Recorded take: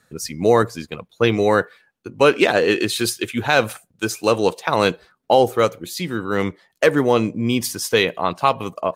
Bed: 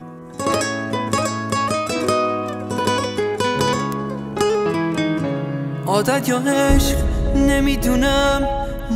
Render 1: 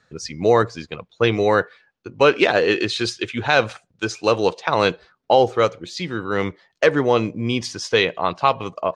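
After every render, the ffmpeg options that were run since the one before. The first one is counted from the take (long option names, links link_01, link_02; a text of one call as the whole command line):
ffmpeg -i in.wav -af "lowpass=frequency=6100:width=0.5412,lowpass=frequency=6100:width=1.3066,equalizer=frequency=230:width_type=o:width=0.89:gain=-4" out.wav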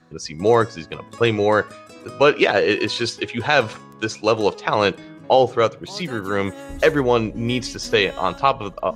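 ffmpeg -i in.wav -i bed.wav -filter_complex "[1:a]volume=-20.5dB[link_01];[0:a][link_01]amix=inputs=2:normalize=0" out.wav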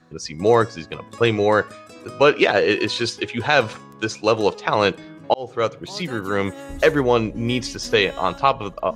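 ffmpeg -i in.wav -filter_complex "[0:a]asplit=2[link_01][link_02];[link_01]atrim=end=5.34,asetpts=PTS-STARTPTS,afade=type=out:start_time=5.336:duration=0.004:curve=hsin[link_03];[link_02]atrim=start=5.34,asetpts=PTS-STARTPTS,afade=type=in:duration=0.43[link_04];[link_03][link_04]concat=n=2:v=0:a=1" out.wav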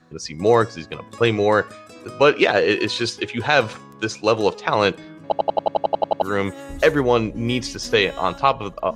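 ffmpeg -i in.wav -filter_complex "[0:a]asplit=12[link_01][link_02][link_03][link_04][link_05][link_06][link_07][link_08][link_09][link_10][link_11][link_12];[link_01]atrim=end=5.322[link_13];[link_02]atrim=start=5.228:end=5.322[link_14];[link_03]atrim=start=5.228:end=5.322[link_15];[link_04]atrim=start=5.228:end=5.322[link_16];[link_05]atrim=start=5.228:end=5.322[link_17];[link_06]atrim=start=5.228:end=5.322[link_18];[link_07]atrim=start=5.228:end=5.322[link_19];[link_08]atrim=start=5.228:end=5.322[link_20];[link_09]atrim=start=5.228:end=5.322[link_21];[link_10]atrim=start=5.228:end=5.322[link_22];[link_11]atrim=start=5.228:end=5.322[link_23];[link_12]atrim=start=6.218[link_24];[link_13][link_14]acrossfade=duration=0.004:curve1=hsin:curve2=hsin[link_25];[link_25][link_15]acrossfade=duration=0.004:curve1=hsin:curve2=hsin[link_26];[link_26][link_16]acrossfade=duration=0.004:curve1=hsin:curve2=hsin[link_27];[link_27][link_17]acrossfade=duration=0.004:curve1=hsin:curve2=hsin[link_28];[link_28][link_18]acrossfade=duration=0.004:curve1=hsin:curve2=hsin[link_29];[link_29][link_19]acrossfade=duration=0.004:curve1=hsin:curve2=hsin[link_30];[link_30][link_20]acrossfade=duration=0.004:curve1=hsin:curve2=hsin[link_31];[link_31][link_21]acrossfade=duration=0.004:curve1=hsin:curve2=hsin[link_32];[link_32][link_22]acrossfade=duration=0.004:curve1=hsin:curve2=hsin[link_33];[link_33][link_23]acrossfade=duration=0.004:curve1=hsin:curve2=hsin[link_34];[link_34][link_24]acrossfade=duration=0.004:curve1=hsin:curve2=hsin" out.wav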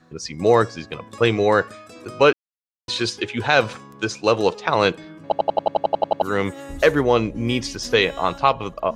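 ffmpeg -i in.wav -filter_complex "[0:a]asplit=3[link_01][link_02][link_03];[link_01]atrim=end=2.33,asetpts=PTS-STARTPTS,afade=type=out:start_time=2.326:duration=0.004:curve=hsin[link_04];[link_02]atrim=start=2.33:end=2.88,asetpts=PTS-STARTPTS,volume=0[link_05];[link_03]atrim=start=2.88,asetpts=PTS-STARTPTS,afade=type=in:duration=0.004:curve=hsin[link_06];[link_04][link_05][link_06]concat=n=3:v=0:a=1" out.wav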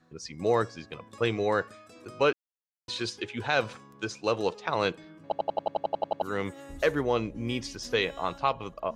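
ffmpeg -i in.wav -af "volume=-9.5dB" out.wav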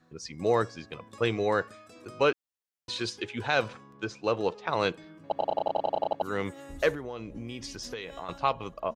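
ffmpeg -i in.wav -filter_complex "[0:a]asettb=1/sr,asplit=3[link_01][link_02][link_03];[link_01]atrim=end=3.684[link_04];[link_02]atrim=start=3.68:end=4.69,asetpts=PTS-STARTPTS,afade=type=in:duration=0.004:curve=qsin,afade=type=out:start_time=1.006:duration=0.004:curve=qsin,aemphasis=mode=reproduction:type=50kf[link_05];[link_03]atrim=start=4.686[link_06];[link_04][link_05]acrossfade=duration=0.004:curve1=hsin:curve2=qsin[link_07];[link_07][link_06]acrossfade=duration=0.004:curve1=qsin:curve2=hsin,asplit=3[link_08][link_09][link_10];[link_08]afade=type=out:start_time=5.35:duration=0.02[link_11];[link_09]asplit=2[link_12][link_13];[link_13]adelay=33,volume=-2dB[link_14];[link_12][link_14]amix=inputs=2:normalize=0,afade=type=in:start_time=5.35:duration=0.02,afade=type=out:start_time=6.13:duration=0.02[link_15];[link_10]afade=type=in:start_time=6.13:duration=0.02[link_16];[link_11][link_15][link_16]amix=inputs=3:normalize=0,asettb=1/sr,asplit=3[link_17][link_18][link_19];[link_17]atrim=end=6.934[link_20];[link_18]atrim=start=6.93:end=8.29,asetpts=PTS-STARTPTS,afade=type=in:duration=0.004:curve=qsin,afade=type=out:start_time=1.356:duration=0.004:curve=qsin,acompressor=threshold=-34dB:ratio=6:attack=3.2:release=140:knee=1:detection=peak[link_21];[link_19]atrim=start=8.286[link_22];[link_20][link_21]acrossfade=duration=0.004:curve1=hsin:curve2=qsin[link_23];[link_23][link_22]acrossfade=duration=0.004:curve1=qsin:curve2=hsin" out.wav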